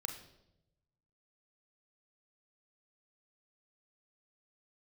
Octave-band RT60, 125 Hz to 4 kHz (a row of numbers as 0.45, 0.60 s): 1.5, 1.1, 1.0, 0.75, 0.65, 0.70 s